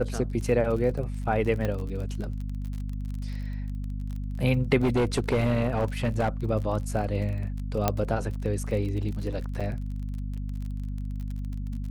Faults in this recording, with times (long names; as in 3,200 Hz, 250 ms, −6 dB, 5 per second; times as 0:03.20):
surface crackle 36 per second −34 dBFS
mains hum 50 Hz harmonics 5 −32 dBFS
0:01.65: click −16 dBFS
0:04.82–0:06.50: clipping −19.5 dBFS
0:07.88: click −8 dBFS
0:09.60–0:09.61: drop-out 6 ms